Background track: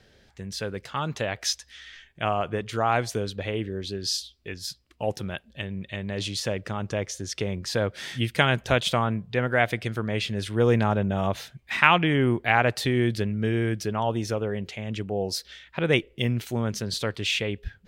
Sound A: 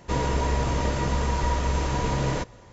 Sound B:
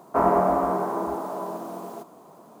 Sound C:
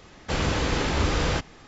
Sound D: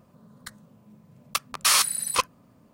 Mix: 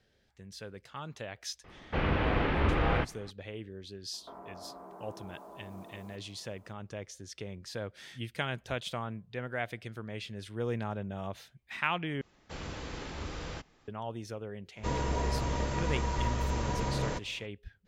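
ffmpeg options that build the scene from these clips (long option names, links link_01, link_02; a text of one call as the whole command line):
ffmpeg -i bed.wav -i cue0.wav -i cue1.wav -i cue2.wav -filter_complex "[3:a]asplit=2[link_01][link_02];[0:a]volume=-13dB[link_03];[link_01]lowpass=frequency=2800:width=0.5412,lowpass=frequency=2800:width=1.3066[link_04];[2:a]acompressor=threshold=-30dB:ratio=6:attack=3.2:release=140:knee=1:detection=peak[link_05];[link_03]asplit=2[link_06][link_07];[link_06]atrim=end=12.214[link_08];[link_02]atrim=end=1.67,asetpts=PTS-STARTPTS,volume=-16dB[link_09];[link_07]atrim=start=13.876[link_10];[link_04]atrim=end=1.67,asetpts=PTS-STARTPTS,volume=-3.5dB,afade=type=in:duration=0.004:curve=hsin,afade=type=out:start_time=1.666:duration=0.004:curve=hsin,adelay=1640[link_11];[link_05]atrim=end=2.6,asetpts=PTS-STARTPTS,volume=-15dB,afade=type=in:duration=0.004:curve=hsin,afade=type=out:start_time=2.596:duration=0.004:curve=hsin,adelay=182133S[link_12];[1:a]atrim=end=2.72,asetpts=PTS-STARTPTS,volume=-7dB,afade=type=in:duration=0.02,afade=type=out:start_time=2.7:duration=0.02,adelay=14750[link_13];[link_08][link_09]acrossfade=duration=0.004:curve1=hsin:curve2=hsin[link_14];[link_14][link_10]acrossfade=duration=0.004:curve1=hsin:curve2=hsin[link_15];[link_15][link_11][link_12][link_13]amix=inputs=4:normalize=0" out.wav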